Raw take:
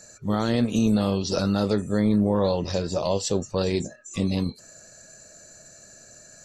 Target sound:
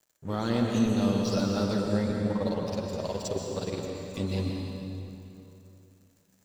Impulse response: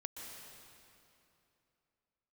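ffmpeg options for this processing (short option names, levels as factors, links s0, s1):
-filter_complex "[0:a]asettb=1/sr,asplit=3[s0][s1][s2];[s0]atrim=end=2.054[s3];[s1]atrim=start=2.05:end=4.14,asetpts=PTS-STARTPTS,afade=t=in:d=0.004:c=qsin,afade=t=out:st=2.086:d=0.004:c=qsin,tremolo=f=19:d=0.97[s4];[s2]atrim=start=4.136[s5];[s3][s4]acrossfade=d=0.004:c1=hsin:c2=qsin[s6];[s6][s5]acrossfade=d=0.004:c1=qsin:c2=hsin,flanger=delay=6.5:depth=1.8:regen=-46:speed=0.81:shape=sinusoidal,aeval=exprs='sgn(val(0))*max(abs(val(0))-0.00447,0)':c=same[s7];[1:a]atrim=start_sample=2205[s8];[s7][s8]afir=irnorm=-1:irlink=0,volume=1.5"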